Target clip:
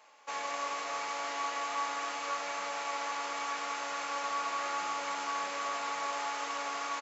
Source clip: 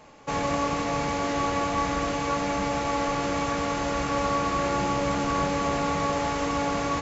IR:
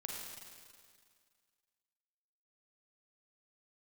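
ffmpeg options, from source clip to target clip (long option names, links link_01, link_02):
-filter_complex "[0:a]highpass=840,asplit=5[link_01][link_02][link_03][link_04][link_05];[link_02]adelay=311,afreqshift=110,volume=-11.5dB[link_06];[link_03]adelay=622,afreqshift=220,volume=-18.6dB[link_07];[link_04]adelay=933,afreqshift=330,volume=-25.8dB[link_08];[link_05]adelay=1244,afreqshift=440,volume=-32.9dB[link_09];[link_01][link_06][link_07][link_08][link_09]amix=inputs=5:normalize=0,asplit=2[link_10][link_11];[1:a]atrim=start_sample=2205[link_12];[link_11][link_12]afir=irnorm=-1:irlink=0,volume=-4dB[link_13];[link_10][link_13]amix=inputs=2:normalize=0,volume=-8.5dB"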